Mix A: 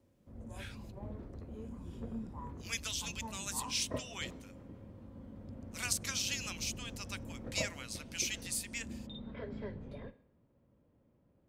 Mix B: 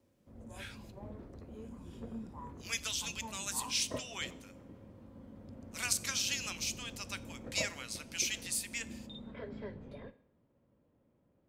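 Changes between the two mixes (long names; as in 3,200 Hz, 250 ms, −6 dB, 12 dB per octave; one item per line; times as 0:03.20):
speech: send on
background: add low-shelf EQ 140 Hz −6 dB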